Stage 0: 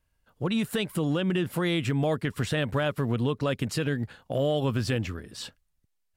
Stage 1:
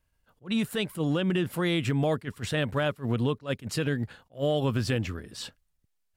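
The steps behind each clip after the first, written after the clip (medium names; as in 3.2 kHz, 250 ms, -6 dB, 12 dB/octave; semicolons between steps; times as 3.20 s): attacks held to a fixed rise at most 300 dB/s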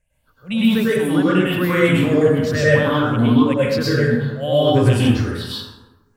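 drifting ripple filter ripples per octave 0.52, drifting +2.3 Hz, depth 17 dB; plate-style reverb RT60 1.1 s, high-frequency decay 0.5×, pre-delay 90 ms, DRR -8.5 dB; trim -1 dB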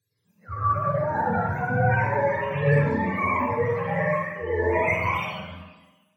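spectrum inverted on a logarithmic axis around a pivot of 510 Hz; Schroeder reverb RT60 0.54 s, combs from 28 ms, DRR 1.5 dB; trim -7 dB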